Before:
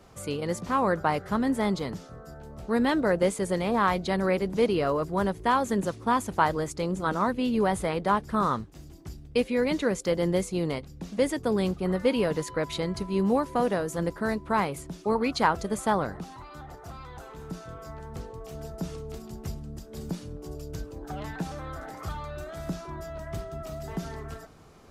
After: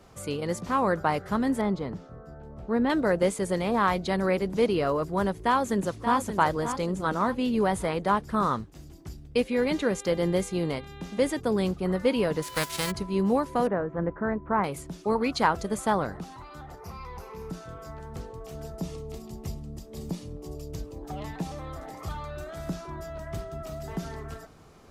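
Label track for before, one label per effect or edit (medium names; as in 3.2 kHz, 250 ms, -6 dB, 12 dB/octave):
1.610000	2.900000	low-pass 1.3 kHz 6 dB/octave
5.310000	6.180000	echo throw 580 ms, feedback 40%, level -9 dB
9.510000	11.390000	mains buzz 400 Hz, harmonics 10, -48 dBFS
12.420000	12.900000	formants flattened exponent 0.3
13.670000	14.640000	low-pass 1.8 kHz 24 dB/octave
16.800000	17.500000	rippled EQ curve crests per octave 0.84, crest to trough 11 dB
18.790000	22.110000	peaking EQ 1.5 kHz -12 dB 0.25 oct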